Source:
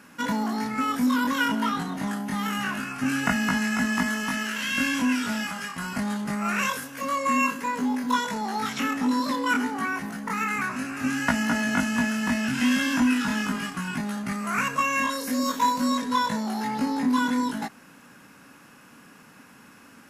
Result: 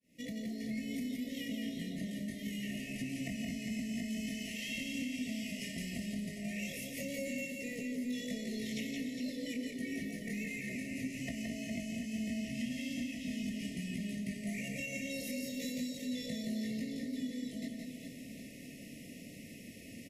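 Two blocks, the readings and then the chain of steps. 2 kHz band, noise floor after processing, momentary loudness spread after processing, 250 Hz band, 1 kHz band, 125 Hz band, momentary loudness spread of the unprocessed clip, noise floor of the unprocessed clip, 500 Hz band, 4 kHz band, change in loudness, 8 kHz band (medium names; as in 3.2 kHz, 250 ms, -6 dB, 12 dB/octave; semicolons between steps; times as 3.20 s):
-17.0 dB, -50 dBFS, 6 LU, -11.5 dB, under -35 dB, -8.5 dB, 7 LU, -51 dBFS, -10.5 dB, -11.5 dB, -14.0 dB, -11.5 dB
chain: fade-in on the opening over 0.73 s; FFT band-reject 700–1800 Hz; bass shelf 110 Hz +10 dB; compression 6:1, threshold -39 dBFS, peak gain reduction 20.5 dB; on a send: reverse bouncing-ball echo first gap 170 ms, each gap 1.4×, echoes 5; on the sum: trim -1 dB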